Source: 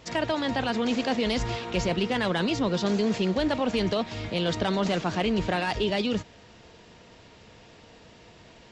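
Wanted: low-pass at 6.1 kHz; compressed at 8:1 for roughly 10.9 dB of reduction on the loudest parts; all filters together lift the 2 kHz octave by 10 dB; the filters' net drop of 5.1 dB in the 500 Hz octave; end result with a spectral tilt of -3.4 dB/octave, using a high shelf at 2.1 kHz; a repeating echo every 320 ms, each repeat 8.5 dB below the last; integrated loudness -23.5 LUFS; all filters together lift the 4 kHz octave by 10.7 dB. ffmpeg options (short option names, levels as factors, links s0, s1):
-af "lowpass=6100,equalizer=f=500:t=o:g=-7.5,equalizer=f=2000:t=o:g=7.5,highshelf=f=2100:g=7,equalizer=f=4000:t=o:g=5,acompressor=threshold=0.0355:ratio=8,aecho=1:1:320|640|960|1280:0.376|0.143|0.0543|0.0206,volume=2.37"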